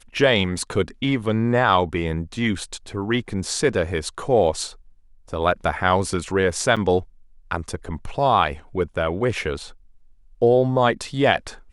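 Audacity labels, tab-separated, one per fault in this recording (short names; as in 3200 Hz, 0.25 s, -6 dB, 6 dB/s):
6.760000	6.770000	gap 6.5 ms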